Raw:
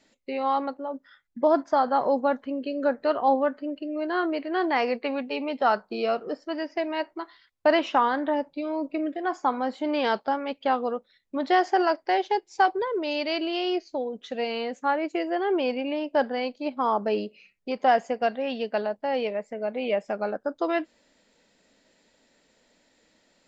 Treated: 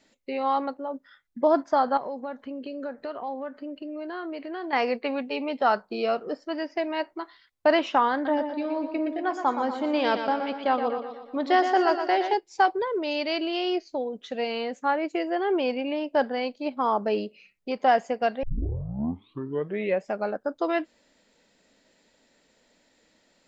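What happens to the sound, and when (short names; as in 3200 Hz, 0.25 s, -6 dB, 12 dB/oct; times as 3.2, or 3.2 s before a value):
1.97–4.73 compressor 3:1, threshold -33 dBFS
8.13–12.34 feedback echo 0.12 s, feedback 52%, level -8 dB
18.43 tape start 1.65 s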